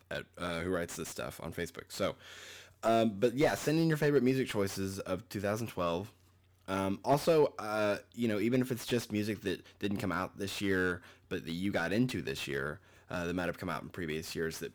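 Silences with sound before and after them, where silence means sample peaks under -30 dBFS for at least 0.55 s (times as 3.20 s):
2.10–2.83 s
6.01–6.70 s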